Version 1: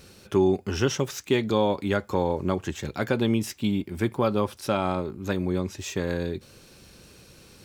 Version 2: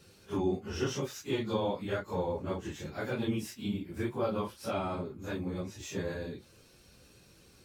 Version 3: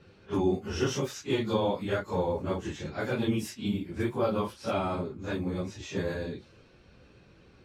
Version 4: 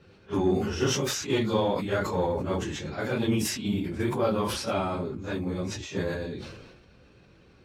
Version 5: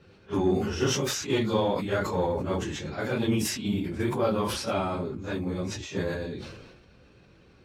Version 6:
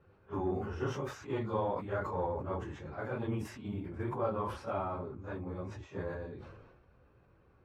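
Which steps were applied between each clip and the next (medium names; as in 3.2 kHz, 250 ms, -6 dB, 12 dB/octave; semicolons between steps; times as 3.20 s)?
phase randomisation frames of 100 ms; trim -8.5 dB
level-controlled noise filter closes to 2.3 kHz, open at -31 dBFS; trim +4 dB
Chebyshev shaper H 7 -33 dB, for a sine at -14.5 dBFS; decay stretcher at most 42 dB/s; trim +1.5 dB
no audible change
FFT filter 110 Hz 0 dB, 190 Hz -7 dB, 1.1 kHz +2 dB, 4.1 kHz -18 dB; trim -6 dB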